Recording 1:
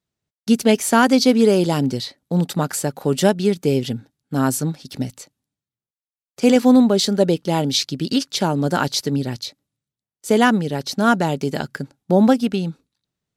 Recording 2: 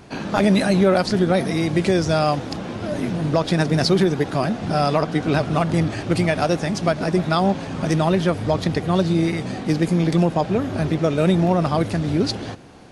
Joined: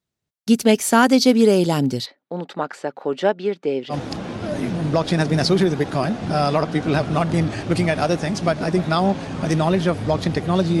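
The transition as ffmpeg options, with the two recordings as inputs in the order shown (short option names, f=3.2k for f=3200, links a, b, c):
-filter_complex "[0:a]asplit=3[a][b][c];[a]afade=t=out:st=2.05:d=0.02[d];[b]highpass=380,lowpass=2.4k,afade=t=in:st=2.05:d=0.02,afade=t=out:st=3.95:d=0.02[e];[c]afade=t=in:st=3.95:d=0.02[f];[d][e][f]amix=inputs=3:normalize=0,apad=whole_dur=10.8,atrim=end=10.8,atrim=end=3.95,asetpts=PTS-STARTPTS[g];[1:a]atrim=start=2.29:end=9.2,asetpts=PTS-STARTPTS[h];[g][h]acrossfade=d=0.06:c1=tri:c2=tri"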